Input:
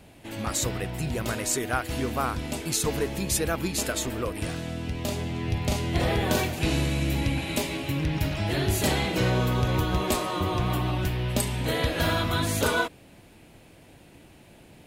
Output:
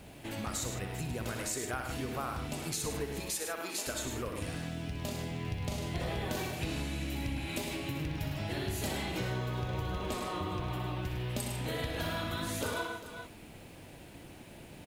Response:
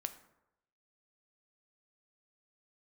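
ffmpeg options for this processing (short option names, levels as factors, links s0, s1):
-filter_complex "[0:a]asettb=1/sr,asplit=3[s0][s1][s2];[s0]atrim=end=3.204[s3];[s1]atrim=start=3.2:end=3.87,asetpts=PTS-STARTPTS,afade=t=in:d=0.004:c=qsin,afade=t=out:st=0.666:d=0.004:c=qsin,highpass=470[s4];[s2]atrim=start=3.866[s5];[s3][s4]acrossfade=d=0.004:c1=hsin:c2=qsin[s6];[s6][s5]acrossfade=d=0.004:c1=qsin:c2=hsin,asettb=1/sr,asplit=3[s7][s8][s9];[s7]atrim=end=9.364[s10];[s8]atrim=start=9.36:end=11.1,asetpts=PTS-STARTPTS,afade=t=in:d=0.004:c=qsin,afade=t=out:st=1.736:d=0.004:c=qsin,highshelf=f=7900:g=-8[s11];[s9]atrim=start=11.096[s12];[s10][s11]acrossfade=d=0.004:c1=hsin:c2=qsin[s13];[s13][s12]acrossfade=d=0.004:c1=qsin:c2=hsin,aecho=1:1:62|104|151|398:0.376|0.398|0.211|0.1,acompressor=threshold=0.0126:ratio=2.5,acrusher=bits=10:mix=0:aa=0.000001"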